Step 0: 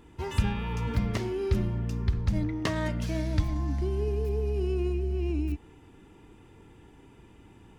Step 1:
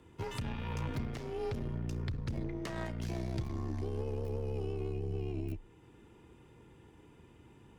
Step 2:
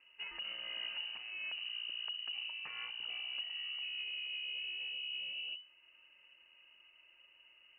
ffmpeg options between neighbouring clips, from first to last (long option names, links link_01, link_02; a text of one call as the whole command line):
ffmpeg -i in.wav -af "aeval=exprs='0.224*(cos(1*acos(clip(val(0)/0.224,-1,1)))-cos(1*PI/2))+0.0355*(cos(6*acos(clip(val(0)/0.224,-1,1)))-cos(6*PI/2))':channel_layout=same,afreqshift=26,alimiter=limit=-22.5dB:level=0:latency=1:release=370,volume=-5dB" out.wav
ffmpeg -i in.wav -af "lowpass=frequency=2600:width_type=q:width=0.5098,lowpass=frequency=2600:width_type=q:width=0.6013,lowpass=frequency=2600:width_type=q:width=0.9,lowpass=frequency=2600:width_type=q:width=2.563,afreqshift=-3000,volume=-6dB" out.wav